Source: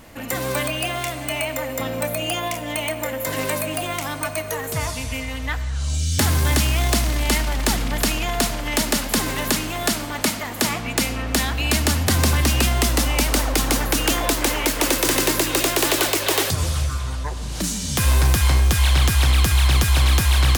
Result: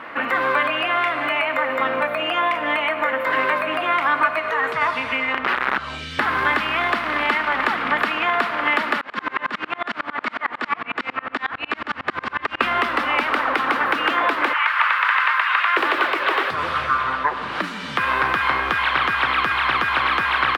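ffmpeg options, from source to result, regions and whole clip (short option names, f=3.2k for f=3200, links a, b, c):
-filter_complex "[0:a]asettb=1/sr,asplit=3[a][b][c];[a]atrim=end=4.394[d];[b]atrim=start=4.39:end=4.82,asetpts=PTS-STARTPTS,afade=t=in:d=0.004:c=qsin,afade=t=out:st=0.426:d=0.004:c=qsin,lowpass=6.2k,aemphasis=mode=production:type=50kf,acompressor=threshold=-25dB:ratio=6:attack=3.2:release=140:knee=1:detection=peak[e];[c]atrim=start=4.816[f];[d][e]acrossfade=d=0.004:c1=hsin:c2=qsin[g];[g][f]acrossfade=d=0.004:c1=qsin:c2=hsin,asettb=1/sr,asplit=3[h][i][j];[h]atrim=end=5.334[k];[i]atrim=start=5.33:end=5.78,asetpts=PTS-STARTPTS,afade=t=in:d=0.004:c=qsin,afade=t=out:st=0.446:d=0.004:c=qsin,aemphasis=mode=reproduction:type=75kf,aeval=exprs='(mod(11.2*val(0)+1,2)-1)/11.2':c=same[l];[j]atrim=start=5.776[m];[k][l]acrossfade=d=0.004:c1=hsin:c2=qsin[n];[n][m]acrossfade=d=0.004:c1=qsin:c2=hsin,asettb=1/sr,asplit=3[o][p][q];[o]atrim=end=9.014[r];[p]atrim=start=9.01:end=12.61,asetpts=PTS-STARTPTS,afade=t=in:d=0.004:c=qsin,afade=t=out:st=3.596:d=0.004:c=qsin,acompressor=threshold=-24dB:ratio=2:attack=3.2:release=140:knee=1:detection=peak,lowpass=f=8k:w=0.5412,lowpass=f=8k:w=1.3066,aeval=exprs='val(0)*pow(10,-33*if(lt(mod(-11*n/s,1),2*abs(-11)/1000),1-mod(-11*n/s,1)/(2*abs(-11)/1000),(mod(-11*n/s,1)-2*abs(-11)/1000)/(1-2*abs(-11)/1000))/20)':c=same[s];[q]atrim=start=12.606[t];[r][s]acrossfade=d=0.004:c1=hsin:c2=qsin[u];[u][t]acrossfade=d=0.004:c1=qsin:c2=hsin,asettb=1/sr,asplit=3[v][w][x];[v]atrim=end=14.534[y];[w]atrim=start=14.53:end=15.77,asetpts=PTS-STARTPTS,afade=t=in:d=0.004:c=qsin,afade=t=out:st=1.236:d=0.004:c=qsin,highpass=f=990:w=0.5412,highpass=f=990:w=1.3066,acrossover=split=3300[z][aa];[aa]acompressor=threshold=-33dB:ratio=4:attack=1:release=60[ab];[z][ab]amix=inputs=2:normalize=0[ac];[x]atrim=start=15.766[ad];[y][ac]acrossfade=d=0.004:c1=hsin:c2=qsin[ae];[ae][ad]acrossfade=d=0.004:c1=qsin:c2=hsin,highpass=340,acompressor=threshold=-30dB:ratio=3,firequalizer=gain_entry='entry(680,0);entry(1200,12);entry(6500,-28)':delay=0.05:min_phase=1,volume=8dB"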